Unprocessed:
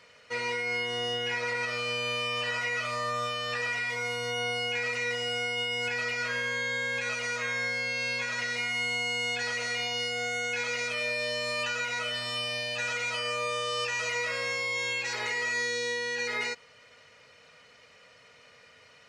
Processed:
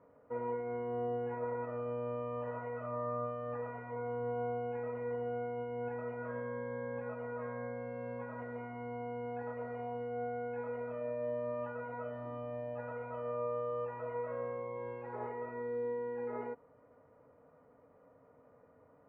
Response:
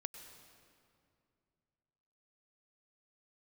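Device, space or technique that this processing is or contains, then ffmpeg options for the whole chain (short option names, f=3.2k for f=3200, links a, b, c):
under water: -af "lowpass=f=990:w=0.5412,lowpass=f=990:w=1.3066,equalizer=f=280:t=o:w=0.26:g=11.5,volume=-1.5dB"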